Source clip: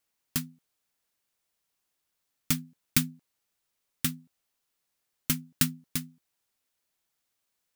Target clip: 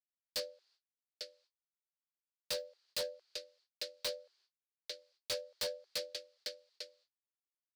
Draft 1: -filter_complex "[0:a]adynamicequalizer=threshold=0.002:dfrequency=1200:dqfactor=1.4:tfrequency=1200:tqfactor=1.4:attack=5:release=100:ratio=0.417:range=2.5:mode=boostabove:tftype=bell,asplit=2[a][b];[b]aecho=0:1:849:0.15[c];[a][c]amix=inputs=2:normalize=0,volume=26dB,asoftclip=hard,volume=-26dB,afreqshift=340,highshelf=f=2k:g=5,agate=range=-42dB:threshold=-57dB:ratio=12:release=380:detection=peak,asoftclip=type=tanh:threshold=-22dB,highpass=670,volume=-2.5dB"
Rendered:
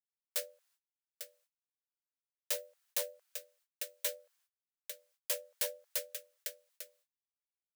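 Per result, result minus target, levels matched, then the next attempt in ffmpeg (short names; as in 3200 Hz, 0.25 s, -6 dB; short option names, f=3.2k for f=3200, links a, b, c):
4000 Hz band -7.5 dB; 500 Hz band -5.5 dB; soft clip: distortion -6 dB
-filter_complex "[0:a]adynamicequalizer=threshold=0.002:dfrequency=1200:dqfactor=1.4:tfrequency=1200:tqfactor=1.4:attack=5:release=100:ratio=0.417:range=2.5:mode=boostabove:tftype=bell,lowpass=f=4.2k:t=q:w=5.2,asplit=2[a][b];[b]aecho=0:1:849:0.15[c];[a][c]amix=inputs=2:normalize=0,volume=26dB,asoftclip=hard,volume=-26dB,afreqshift=340,highshelf=f=2k:g=5,agate=range=-42dB:threshold=-57dB:ratio=12:release=380:detection=peak,asoftclip=type=tanh:threshold=-22dB,highpass=670,volume=-2.5dB"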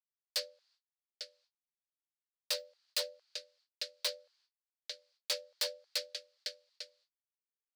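500 Hz band -6.0 dB; soft clip: distortion -7 dB
-filter_complex "[0:a]adynamicequalizer=threshold=0.002:dfrequency=1200:dqfactor=1.4:tfrequency=1200:tqfactor=1.4:attack=5:release=100:ratio=0.417:range=2.5:mode=boostabove:tftype=bell,lowpass=f=4.2k:t=q:w=5.2,asplit=2[a][b];[b]aecho=0:1:849:0.15[c];[a][c]amix=inputs=2:normalize=0,volume=26dB,asoftclip=hard,volume=-26dB,afreqshift=340,highshelf=f=2k:g=5,agate=range=-42dB:threshold=-57dB:ratio=12:release=380:detection=peak,asoftclip=type=tanh:threshold=-22dB,volume=-2.5dB"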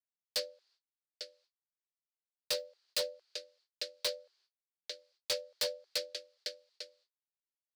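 soft clip: distortion -7 dB
-filter_complex "[0:a]adynamicequalizer=threshold=0.002:dfrequency=1200:dqfactor=1.4:tfrequency=1200:tqfactor=1.4:attack=5:release=100:ratio=0.417:range=2.5:mode=boostabove:tftype=bell,lowpass=f=4.2k:t=q:w=5.2,asplit=2[a][b];[b]aecho=0:1:849:0.15[c];[a][c]amix=inputs=2:normalize=0,volume=26dB,asoftclip=hard,volume=-26dB,afreqshift=340,highshelf=f=2k:g=5,agate=range=-42dB:threshold=-57dB:ratio=12:release=380:detection=peak,asoftclip=type=tanh:threshold=-29.5dB,volume=-2.5dB"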